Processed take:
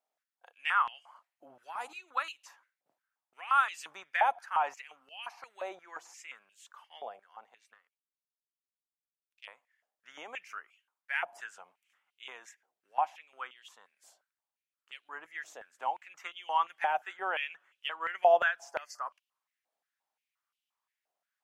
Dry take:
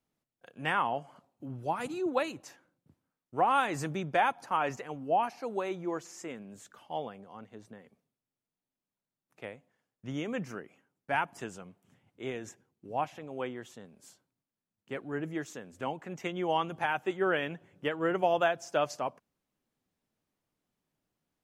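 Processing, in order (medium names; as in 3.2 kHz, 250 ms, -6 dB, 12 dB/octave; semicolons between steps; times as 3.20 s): 7.74–9.46 s: power-law waveshaper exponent 1.4; 18.72–19.10 s: time-frequency box 2.1–4.3 kHz -17 dB; step-sequenced high-pass 5.7 Hz 680–2900 Hz; trim -5.5 dB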